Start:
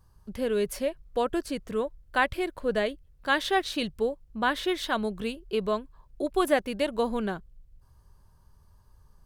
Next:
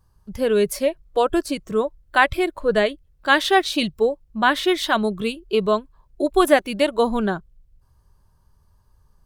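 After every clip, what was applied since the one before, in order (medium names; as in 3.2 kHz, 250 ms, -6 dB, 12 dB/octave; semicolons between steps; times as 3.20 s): spectral noise reduction 9 dB; trim +8.5 dB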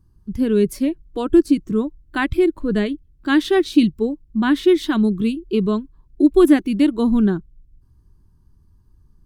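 resonant low shelf 420 Hz +10 dB, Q 3; trim -5.5 dB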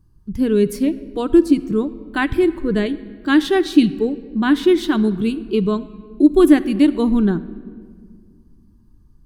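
simulated room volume 3000 m³, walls mixed, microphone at 0.45 m; trim +1 dB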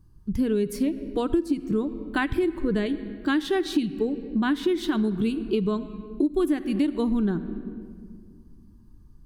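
compression 6:1, threshold -21 dBFS, peak gain reduction 14.5 dB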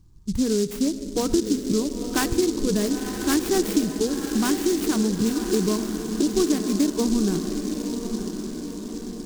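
echo that smears into a reverb 994 ms, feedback 55%, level -7 dB; delay time shaken by noise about 5.6 kHz, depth 0.099 ms; trim +1.5 dB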